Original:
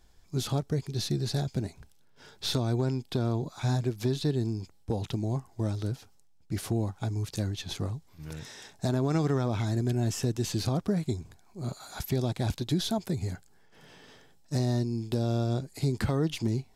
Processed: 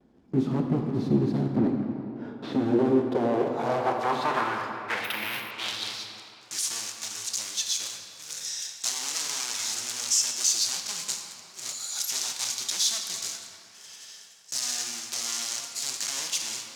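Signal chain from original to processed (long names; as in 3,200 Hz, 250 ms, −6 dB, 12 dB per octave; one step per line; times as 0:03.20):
one scale factor per block 3 bits
noise gate with hold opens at −55 dBFS
low-shelf EQ 110 Hz −11.5 dB
sine wavefolder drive 14 dB, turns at −12.5 dBFS
band-pass filter sweep 250 Hz → 6,400 Hz, 0:02.43–0:06.43
0:01.56–0:02.53: mid-hump overdrive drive 16 dB, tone 1,600 Hz, clips at −15.5 dBFS
convolution reverb RT60 3.1 s, pre-delay 14 ms, DRR 2.5 dB
0:05.04–0:05.51: bad sample-rate conversion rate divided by 3×, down filtered, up hold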